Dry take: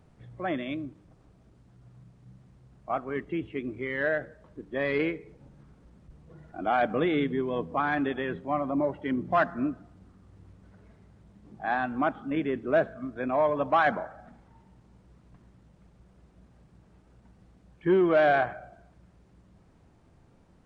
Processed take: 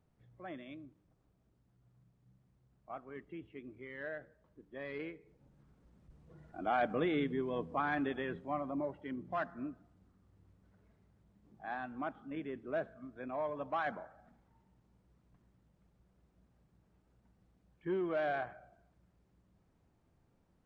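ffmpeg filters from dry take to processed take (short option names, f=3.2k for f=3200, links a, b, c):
-af "volume=-7dB,afade=t=in:st=5.2:d=1.25:silence=0.375837,afade=t=out:st=8.2:d=0.94:silence=0.501187"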